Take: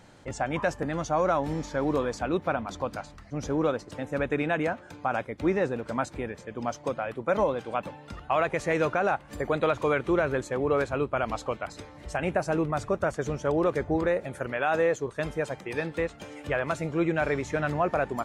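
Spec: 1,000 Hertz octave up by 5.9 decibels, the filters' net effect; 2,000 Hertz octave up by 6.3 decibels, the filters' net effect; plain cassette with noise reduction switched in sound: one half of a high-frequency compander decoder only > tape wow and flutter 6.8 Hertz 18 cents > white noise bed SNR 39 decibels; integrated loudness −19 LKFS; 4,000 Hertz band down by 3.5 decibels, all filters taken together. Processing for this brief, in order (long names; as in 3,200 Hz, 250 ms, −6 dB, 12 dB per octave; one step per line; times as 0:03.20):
parametric band 1,000 Hz +6.5 dB
parametric band 2,000 Hz +7.5 dB
parametric band 4,000 Hz −8.5 dB
one half of a high-frequency compander decoder only
tape wow and flutter 6.8 Hz 18 cents
white noise bed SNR 39 dB
level +6.5 dB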